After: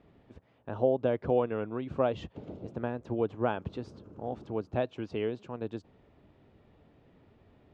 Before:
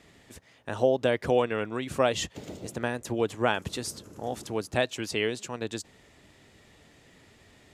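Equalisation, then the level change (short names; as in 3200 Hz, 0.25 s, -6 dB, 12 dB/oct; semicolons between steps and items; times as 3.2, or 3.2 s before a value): tape spacing loss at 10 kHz 34 dB; bell 1900 Hz -7.5 dB 0.46 oct; high shelf 4800 Hz -10 dB; -1.0 dB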